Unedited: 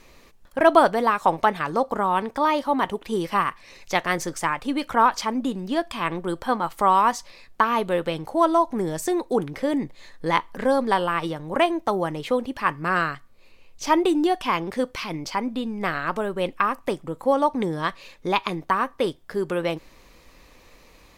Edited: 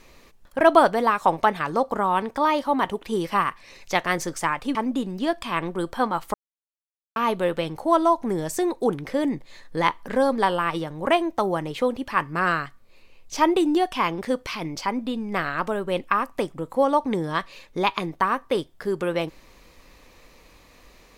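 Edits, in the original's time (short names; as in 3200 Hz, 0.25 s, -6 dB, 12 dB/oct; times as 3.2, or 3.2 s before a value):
4.75–5.24 cut
6.83–7.65 mute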